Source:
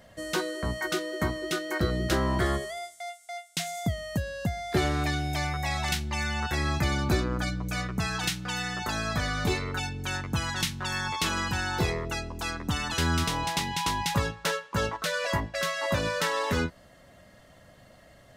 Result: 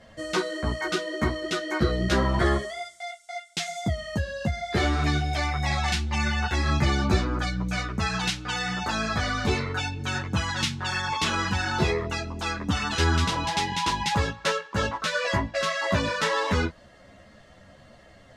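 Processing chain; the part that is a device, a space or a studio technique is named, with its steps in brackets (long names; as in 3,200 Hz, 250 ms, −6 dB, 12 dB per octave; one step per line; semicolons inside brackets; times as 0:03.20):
string-machine ensemble chorus (string-ensemble chorus; low-pass filter 6,800 Hz 12 dB per octave)
level +6 dB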